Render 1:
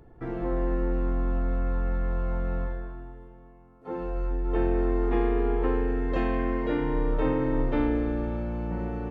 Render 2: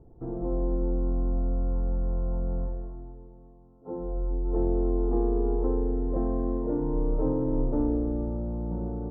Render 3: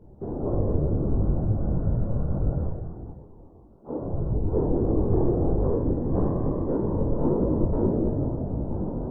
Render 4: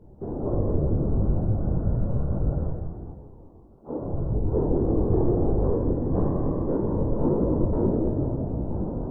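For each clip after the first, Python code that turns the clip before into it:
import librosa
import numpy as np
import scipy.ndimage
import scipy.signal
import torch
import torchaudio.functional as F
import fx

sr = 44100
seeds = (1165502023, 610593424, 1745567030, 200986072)

y1 = scipy.signal.sosfilt(scipy.signal.bessel(6, 630.0, 'lowpass', norm='mag', fs=sr, output='sos'), x)
y2 = fx.whisperise(y1, sr, seeds[0])
y2 = fx.detune_double(y2, sr, cents=56)
y2 = y2 * librosa.db_to_amplitude(6.5)
y3 = y2 + 10.0 ** (-10.5 / 20.0) * np.pad(y2, (int(167 * sr / 1000.0), 0))[:len(y2)]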